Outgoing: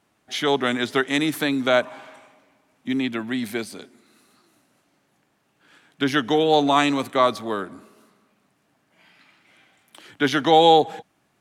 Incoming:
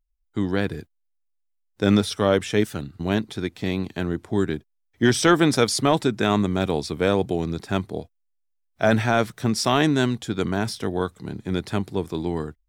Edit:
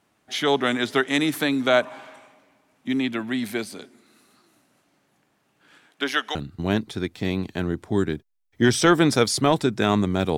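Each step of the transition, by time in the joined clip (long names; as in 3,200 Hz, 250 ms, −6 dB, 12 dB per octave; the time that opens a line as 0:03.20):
outgoing
0:05.86–0:06.35: high-pass filter 250 Hz → 970 Hz
0:06.35: continue with incoming from 0:02.76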